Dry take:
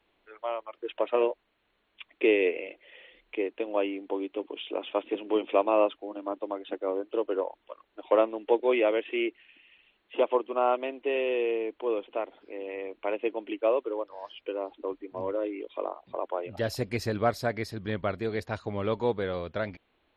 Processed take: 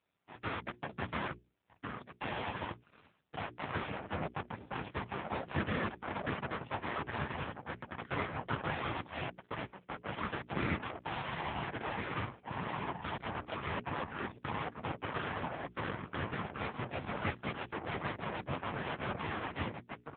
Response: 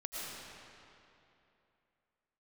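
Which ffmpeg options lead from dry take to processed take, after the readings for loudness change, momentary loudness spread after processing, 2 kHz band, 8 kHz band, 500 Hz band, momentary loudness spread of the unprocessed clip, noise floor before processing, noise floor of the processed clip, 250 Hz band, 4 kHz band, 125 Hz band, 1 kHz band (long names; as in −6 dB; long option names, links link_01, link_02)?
−9.5 dB, 7 LU, −1.5 dB, can't be measured, −16.0 dB, 12 LU, −73 dBFS, −69 dBFS, −8.0 dB, −3.5 dB, +0.5 dB, −4.5 dB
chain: -filter_complex "[0:a]acrossover=split=130|900|1700[link_01][link_02][link_03][link_04];[link_02]acompressor=threshold=-37dB:ratio=12[link_05];[link_01][link_05][link_03][link_04]amix=inputs=4:normalize=0,acrossover=split=180 2300:gain=0.141 1 0.0631[link_06][link_07][link_08];[link_06][link_07][link_08]amix=inputs=3:normalize=0,asplit=2[link_09][link_10];[link_10]adelay=1399,volume=-8dB,highshelf=frequency=4000:gain=-31.5[link_11];[link_09][link_11]amix=inputs=2:normalize=0,aeval=exprs='abs(val(0))':channel_layout=same,afftfilt=real='hypot(re,im)*cos(2*PI*random(0))':imag='hypot(re,im)*sin(2*PI*random(1))':win_size=512:overlap=0.75,asoftclip=type=hard:threshold=-35.5dB,aeval=exprs='0.0168*(cos(1*acos(clip(val(0)/0.0168,-1,1)))-cos(1*PI/2))+0.00133*(cos(2*acos(clip(val(0)/0.0168,-1,1)))-cos(2*PI/2))+0.000422*(cos(4*acos(clip(val(0)/0.0168,-1,1)))-cos(4*PI/2))+0.00299*(cos(7*acos(clip(val(0)/0.0168,-1,1)))-cos(7*PI/2))+0.0075*(cos(8*acos(clip(val(0)/0.0168,-1,1)))-cos(8*PI/2))':channel_layout=same,aemphasis=mode=reproduction:type=75fm,bandreject=frequency=60:width_type=h:width=6,bandreject=frequency=120:width_type=h:width=6,bandreject=frequency=180:width_type=h:width=6,bandreject=frequency=240:width_type=h:width=6,bandreject=frequency=300:width_type=h:width=6,bandreject=frequency=360:width_type=h:width=6,bandreject=frequency=420:width_type=h:width=6,volume=10.5dB" -ar 8000 -c:a libopencore_amrnb -b:a 5900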